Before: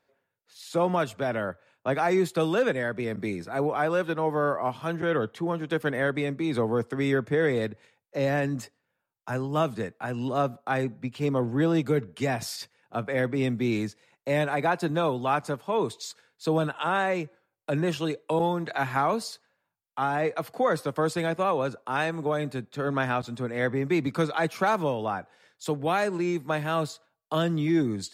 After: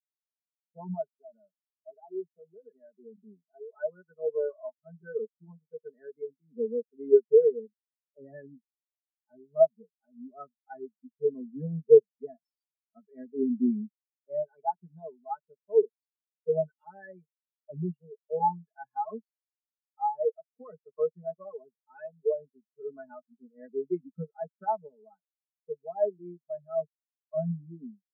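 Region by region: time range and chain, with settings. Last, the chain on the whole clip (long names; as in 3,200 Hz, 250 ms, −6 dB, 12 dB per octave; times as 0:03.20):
0:01.11–0:03.73: low-pass filter 2,300 Hz + downward compressor, threshold −26 dBFS + notch comb filter 1,100 Hz
whole clip: comb filter 4.7 ms, depth 81%; automatic gain control gain up to 9 dB; every bin expanded away from the loudest bin 4 to 1; level −4.5 dB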